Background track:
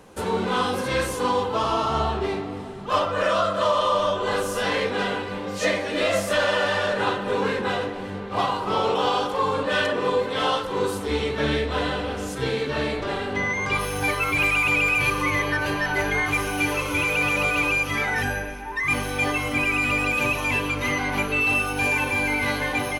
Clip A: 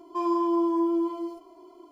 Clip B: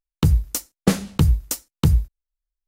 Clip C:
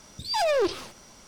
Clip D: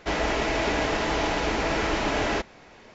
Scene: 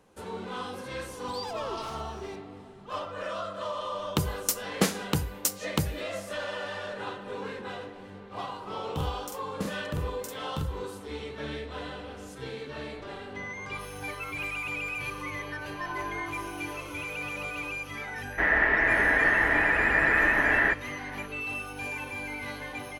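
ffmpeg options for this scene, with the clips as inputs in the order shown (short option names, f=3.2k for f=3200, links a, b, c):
-filter_complex "[2:a]asplit=2[a][b];[0:a]volume=-13dB[c];[3:a]acompressor=threshold=-31dB:ratio=6:attack=3.2:release=140:knee=1:detection=peak[d];[a]highpass=f=440:p=1[e];[b]asplit=2[f][g];[g]adelay=45,volume=-3dB[h];[f][h]amix=inputs=2:normalize=0[i];[1:a]highpass=740,lowpass=3.1k[j];[4:a]lowpass=f=1.8k:t=q:w=14[k];[d]atrim=end=1.27,asetpts=PTS-STARTPTS,volume=-5.5dB,afade=t=in:d=0.004:c=hsin,afade=t=out:st=1.266:d=0.004:c=hsin,adelay=1090[l];[e]atrim=end=2.67,asetpts=PTS-STARTPTS,volume=-1dB,afade=t=in:d=0.004:c=hsin,afade=t=out:st=2.666:d=0.004:c=hsin,adelay=3940[m];[i]atrim=end=2.67,asetpts=PTS-STARTPTS,volume=-17.5dB,afade=t=in:d=0.004:c=hsin,afade=t=out:st=2.666:d=0.004:c=hsin,adelay=8730[n];[j]atrim=end=1.91,asetpts=PTS-STARTPTS,volume=-6.5dB,afade=t=in:d=0.004:c=hsin,afade=t=out:st=1.906:d=0.004:c=hsin,adelay=15640[o];[k]atrim=end=2.94,asetpts=PTS-STARTPTS,volume=-5.5dB,afade=t=in:d=0.004:c=hsin,afade=t=out:st=2.936:d=0.004:c=hsin,adelay=18320[p];[c][l][m][n][o][p]amix=inputs=6:normalize=0"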